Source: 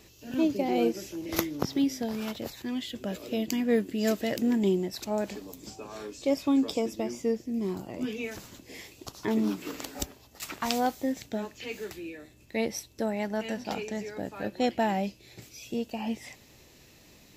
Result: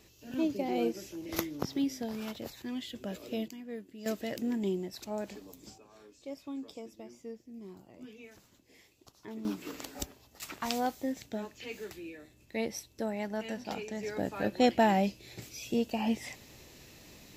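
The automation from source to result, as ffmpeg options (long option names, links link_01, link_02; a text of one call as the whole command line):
ffmpeg -i in.wav -af "asetnsamples=nb_out_samples=441:pad=0,asendcmd='3.48 volume volume -17dB;4.06 volume volume -7dB;5.78 volume volume -16dB;9.45 volume volume -4.5dB;14.03 volume volume 2dB',volume=-5dB" out.wav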